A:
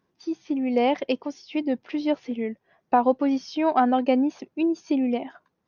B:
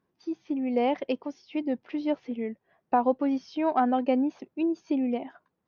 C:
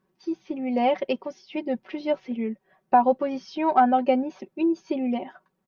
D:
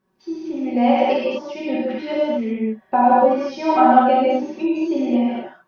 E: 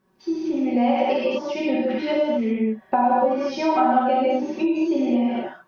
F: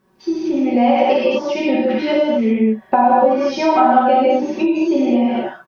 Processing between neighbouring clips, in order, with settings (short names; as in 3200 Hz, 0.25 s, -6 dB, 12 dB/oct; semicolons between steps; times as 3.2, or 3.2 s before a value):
high shelf 4200 Hz -10.5 dB; gain -3.5 dB
comb 5.3 ms, depth 72%; gain +2.5 dB
non-linear reverb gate 0.27 s flat, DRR -7.5 dB; gain -1.5 dB
compressor 2.5:1, threshold -24 dBFS, peak gain reduction 11.5 dB; gain +4 dB
doubler 14 ms -13 dB; gain +6 dB